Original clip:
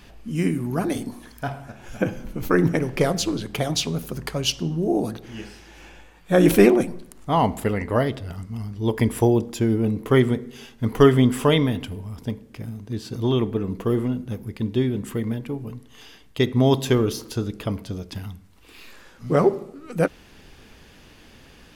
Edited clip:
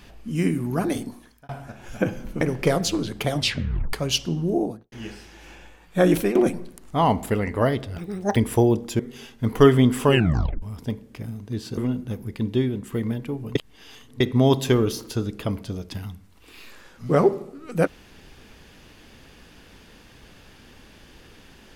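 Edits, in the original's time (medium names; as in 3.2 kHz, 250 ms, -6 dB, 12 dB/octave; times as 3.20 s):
0.94–1.49 s: fade out
2.41–2.75 s: delete
3.68 s: tape stop 0.59 s
4.82–5.26 s: studio fade out
6.32–6.69 s: fade out, to -16 dB
8.32–9.01 s: speed 180%
9.64–10.39 s: delete
11.46 s: tape stop 0.56 s
13.17–13.98 s: delete
14.68–15.13 s: fade out equal-power, to -7 dB
15.76–16.41 s: reverse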